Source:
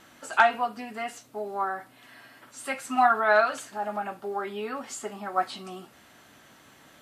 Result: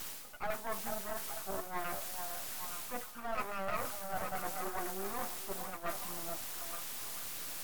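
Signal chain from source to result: LFO low-pass saw down 6.5 Hz 810–1700 Hz; in parallel at -3 dB: word length cut 6-bit, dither triangular; on the sum: treble shelf 7.6 kHz +10.5 dB; reverse; compression 8:1, threshold -24 dBFS, peak gain reduction 18.5 dB; reverse; repeats whose band climbs or falls 400 ms, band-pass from 750 Hz, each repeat 0.7 oct, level -4 dB; half-wave rectifier; speed mistake 48 kHz file played as 44.1 kHz; trim -7.5 dB

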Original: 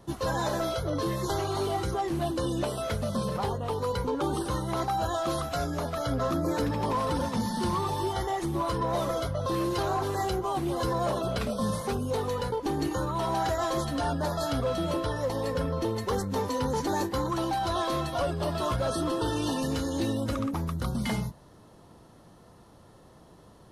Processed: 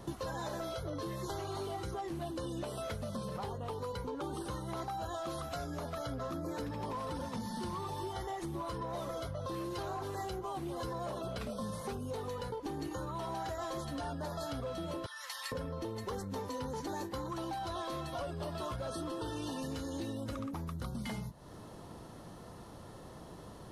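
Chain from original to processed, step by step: 15.06–15.52 s: high-pass 1.4 kHz 24 dB/octave; compression 6:1, threshold -42 dBFS, peak gain reduction 16 dB; trim +4 dB

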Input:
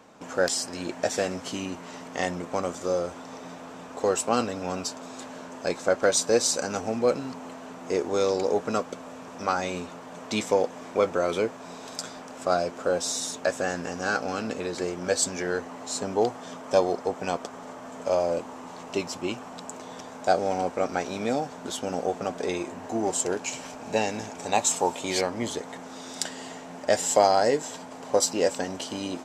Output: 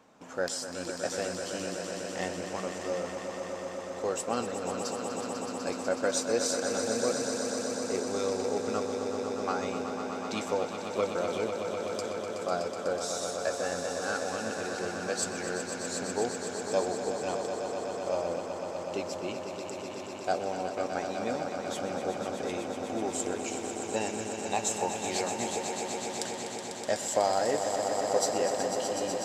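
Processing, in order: echo with a slow build-up 124 ms, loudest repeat 5, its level -9 dB; trim -7.5 dB

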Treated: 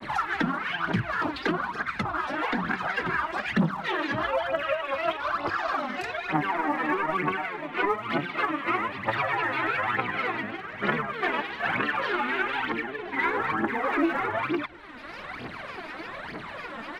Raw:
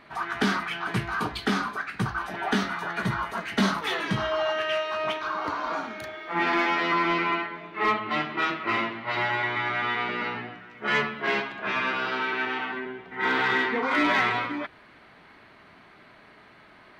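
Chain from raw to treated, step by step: low-pass that closes with the level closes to 1.3 kHz, closed at -20.5 dBFS; phaser 1.1 Hz, delay 3.8 ms, feedback 71%; granulator, spray 14 ms, pitch spread up and down by 3 st; echo from a far wall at 34 m, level -28 dB; three bands compressed up and down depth 70%; trim -1.5 dB

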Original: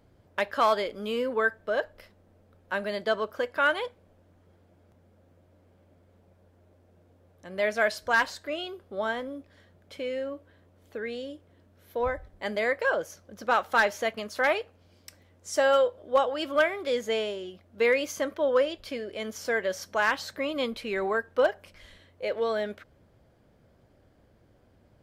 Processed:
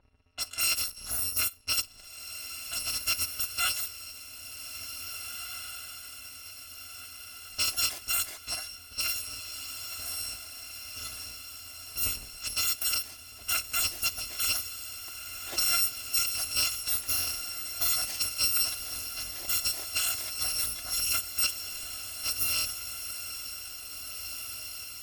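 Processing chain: bit-reversed sample order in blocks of 256 samples; peak limiter -17.5 dBFS, peak gain reduction 4.5 dB; level-controlled noise filter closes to 2.3 kHz, open at -27 dBFS; on a send: echo that smears into a reverb 1942 ms, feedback 58%, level -8.5 dB

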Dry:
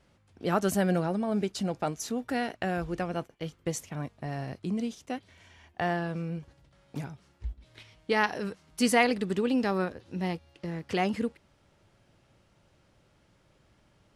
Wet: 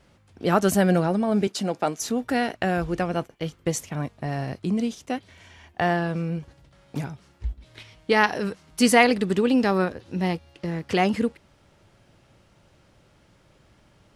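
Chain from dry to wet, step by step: 1.47–2.00 s: high-pass 210 Hz 12 dB/octave; trim +6.5 dB

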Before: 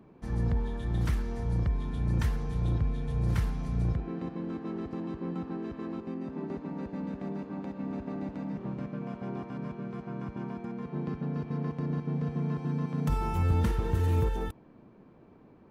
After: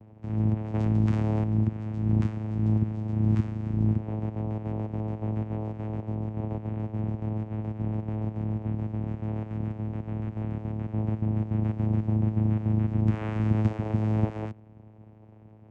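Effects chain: 11.62–12.16 s: treble shelf 4.2 kHz +9 dB; vocoder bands 4, saw 108 Hz; 0.74–1.44 s: level flattener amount 70%; trim +6.5 dB

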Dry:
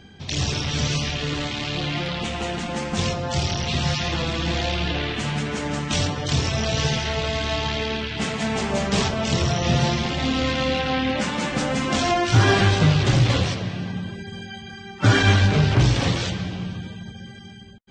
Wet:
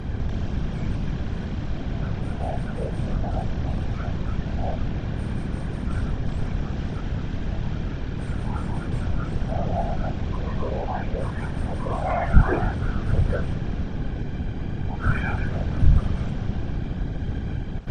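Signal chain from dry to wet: spectral levelling over time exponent 0.2; recorder AGC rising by 21 dB/s; on a send at -14 dB: tilt shelf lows -5.5 dB, about 1.1 kHz + reverberation RT60 0.55 s, pre-delay 4 ms; on the sum: spectral noise reduction 22 dB; whisper effect; in parallel at -8.5 dB: hard clipper -23.5 dBFS, distortion -11 dB; on the sum: RIAA curve playback; trim -5.5 dB

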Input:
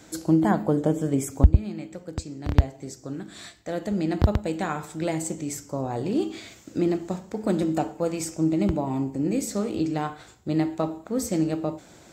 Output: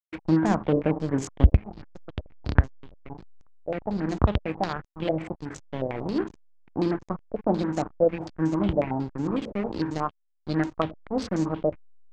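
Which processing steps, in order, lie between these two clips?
hysteresis with a dead band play -24 dBFS; step-sequenced low-pass 11 Hz 580–6500 Hz; trim -1 dB

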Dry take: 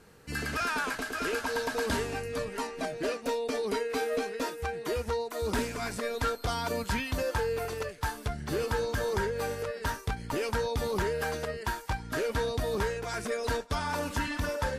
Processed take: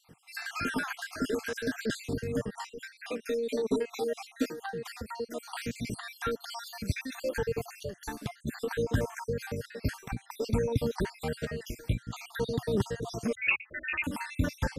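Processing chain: random holes in the spectrogram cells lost 57%; ten-band graphic EQ 125 Hz +8 dB, 250 Hz +8 dB, 1 kHz -4 dB; 13.35–14.04 s: frequency inversion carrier 2.7 kHz

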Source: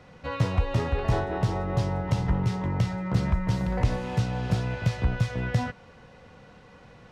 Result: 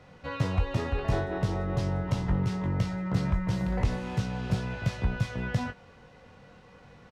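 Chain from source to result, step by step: doubling 21 ms -8 dB; trim -3 dB

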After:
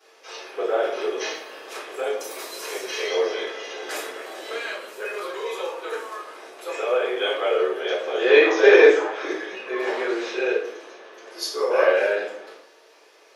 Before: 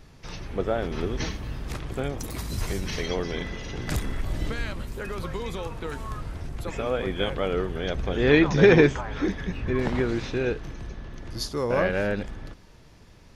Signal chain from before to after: steep high-pass 390 Hz 36 dB/octave; simulated room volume 77 m³, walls mixed, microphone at 3.8 m; trim -9 dB

